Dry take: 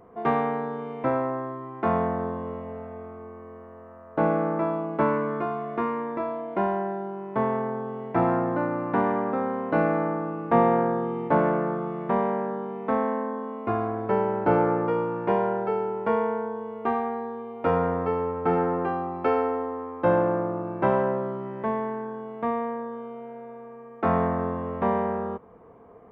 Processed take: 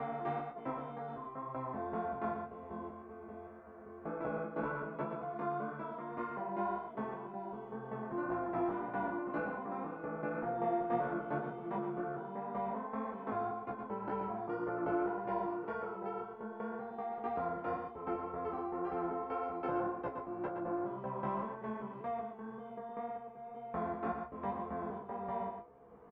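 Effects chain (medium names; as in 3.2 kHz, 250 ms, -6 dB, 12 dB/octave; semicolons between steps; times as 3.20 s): slices played last to first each 193 ms, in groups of 3; feedback comb 70 Hz, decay 0.2 s, harmonics all, mix 100%; chorus 1.9 Hz, delay 15.5 ms, depth 4.8 ms; delay 117 ms -7 dB; three bands compressed up and down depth 40%; trim -4.5 dB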